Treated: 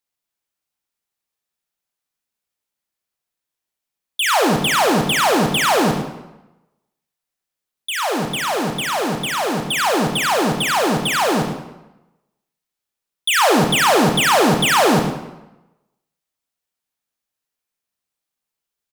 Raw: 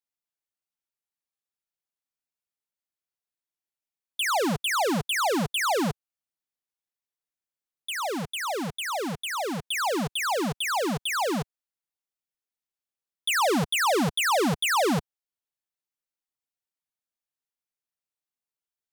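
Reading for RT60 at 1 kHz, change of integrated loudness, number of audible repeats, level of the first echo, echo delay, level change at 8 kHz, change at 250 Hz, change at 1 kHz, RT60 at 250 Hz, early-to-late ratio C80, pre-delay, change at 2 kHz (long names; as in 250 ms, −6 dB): 1.0 s, +9.0 dB, 1, −12.5 dB, 108 ms, +8.5 dB, +9.0 dB, +9.5 dB, 0.95 s, 7.0 dB, 26 ms, +9.0 dB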